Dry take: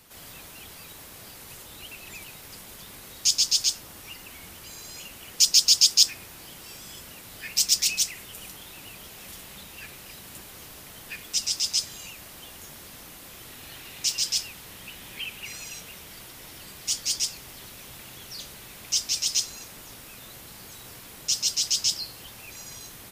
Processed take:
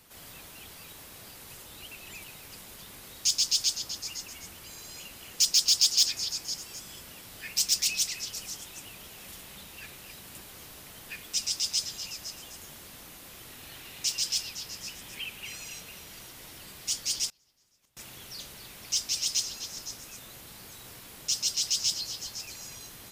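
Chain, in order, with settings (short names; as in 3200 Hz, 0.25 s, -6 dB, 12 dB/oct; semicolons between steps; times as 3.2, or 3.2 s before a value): soft clip -10.5 dBFS, distortion -18 dB; delay with a stepping band-pass 0.255 s, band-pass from 3500 Hz, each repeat 0.7 oct, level -8.5 dB; 17.29–17.97 flipped gate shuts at -32 dBFS, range -28 dB; gain -3 dB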